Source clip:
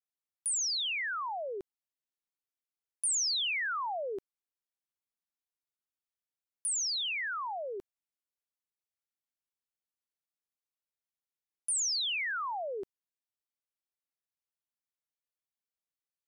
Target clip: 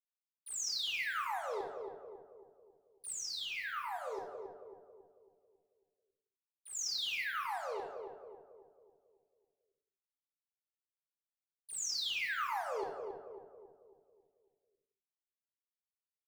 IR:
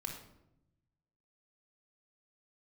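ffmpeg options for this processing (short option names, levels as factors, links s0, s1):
-filter_complex "[0:a]agate=range=0.0224:threshold=0.02:ratio=3:detection=peak,lowpass=f=6900:w=0.5412,lowpass=f=6900:w=1.3066,equalizer=f=630:w=0.6:g=2.5,acompressor=threshold=0.02:ratio=6,acrusher=bits=7:mix=0:aa=0.5,asettb=1/sr,asplit=3[s0][s1][s2];[s0]atrim=end=3.124[s3];[s1]atrim=start=3.12:end=6.75,asetpts=PTS-STARTPTS,afade=t=in:d=0.004:c=qsin,afade=t=out:st=3.626:d=0.004:c=qsin,flanger=delay=8.2:depth=3.6:regen=52:speed=1.6:shape=sinusoidal[s4];[s2]atrim=start=6.746[s5];[s3][s4]acrossfade=d=0.004:c1=hsin:c2=qsin[s6];[s6][s5]acrossfade=d=0.004:c1=qsin:c2=hsin,asplit=2[s7][s8];[s8]adelay=274,lowpass=f=960:p=1,volume=0.631,asplit=2[s9][s10];[s10]adelay=274,lowpass=f=960:p=1,volume=0.52,asplit=2[s11][s12];[s12]adelay=274,lowpass=f=960:p=1,volume=0.52,asplit=2[s13][s14];[s14]adelay=274,lowpass=f=960:p=1,volume=0.52,asplit=2[s15][s16];[s16]adelay=274,lowpass=f=960:p=1,volume=0.52,asplit=2[s17][s18];[s18]adelay=274,lowpass=f=960:p=1,volume=0.52,asplit=2[s19][s20];[s20]adelay=274,lowpass=f=960:p=1,volume=0.52[s21];[s7][s9][s11][s13][s15][s17][s19][s21]amix=inputs=8:normalize=0[s22];[1:a]atrim=start_sample=2205,afade=t=out:st=0.32:d=0.01,atrim=end_sample=14553[s23];[s22][s23]afir=irnorm=-1:irlink=0"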